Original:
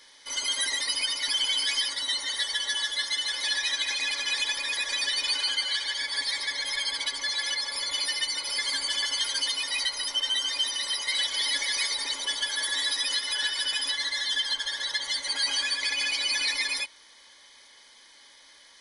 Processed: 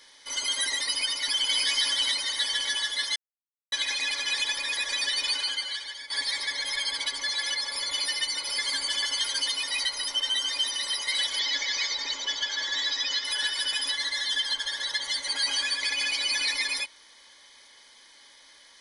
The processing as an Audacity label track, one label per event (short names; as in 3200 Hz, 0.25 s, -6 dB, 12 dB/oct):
0.910000	1.530000	echo throw 0.58 s, feedback 55%, level -1.5 dB
3.160000	3.720000	mute
5.260000	6.100000	fade out, to -12.5 dB
11.390000	13.250000	elliptic low-pass 7000 Hz